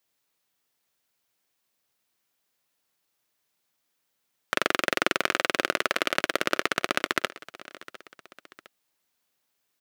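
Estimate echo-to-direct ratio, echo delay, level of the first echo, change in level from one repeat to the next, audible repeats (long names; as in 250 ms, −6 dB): −18.0 dB, 706 ms, −19.0 dB, −6.0 dB, 2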